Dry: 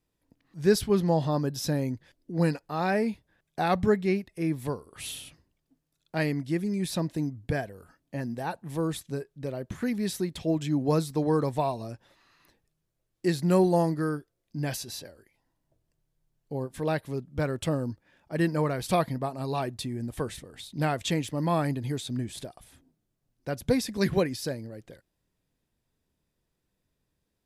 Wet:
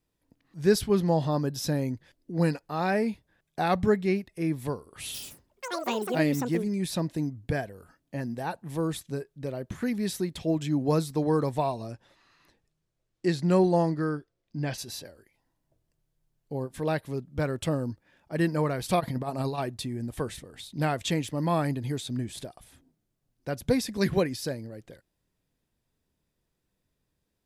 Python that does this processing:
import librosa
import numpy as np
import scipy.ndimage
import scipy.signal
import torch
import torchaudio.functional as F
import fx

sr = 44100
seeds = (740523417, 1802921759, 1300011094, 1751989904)

y = fx.echo_pitch(x, sr, ms=82, semitones=7, count=3, db_per_echo=-3.0, at=(5.06, 7.36))
y = fx.lowpass(y, sr, hz=fx.line((11.59, 12000.0), (14.77, 5000.0)), slope=12, at=(11.59, 14.77), fade=0.02)
y = fx.over_compress(y, sr, threshold_db=-32.0, ratio=-0.5, at=(18.99, 19.57), fade=0.02)